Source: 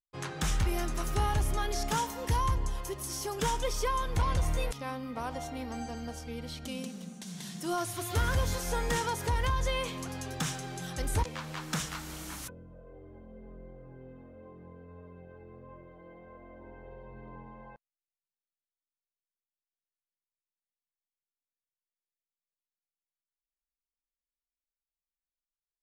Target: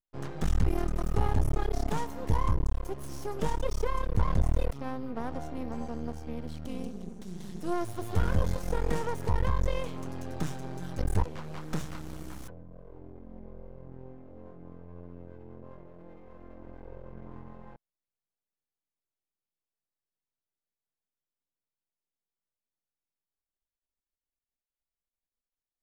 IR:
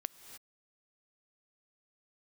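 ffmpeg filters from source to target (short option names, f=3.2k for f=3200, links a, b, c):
-af "aeval=exprs='max(val(0),0)':c=same,tiltshelf=f=1.1k:g=7.5"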